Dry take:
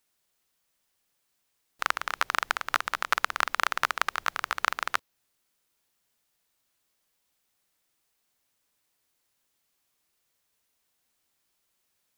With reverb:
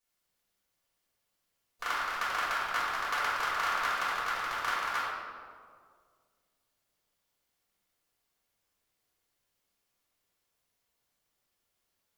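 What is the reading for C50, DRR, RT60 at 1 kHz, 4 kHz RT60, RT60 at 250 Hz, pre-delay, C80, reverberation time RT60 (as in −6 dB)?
−2.0 dB, −10.5 dB, 1.8 s, 1.1 s, 2.0 s, 3 ms, 0.0 dB, 2.0 s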